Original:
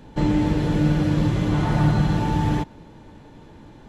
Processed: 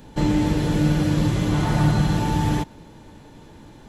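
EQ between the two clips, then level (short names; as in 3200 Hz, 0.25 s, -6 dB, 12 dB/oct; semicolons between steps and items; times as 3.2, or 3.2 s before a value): high shelf 5400 Hz +11.5 dB; 0.0 dB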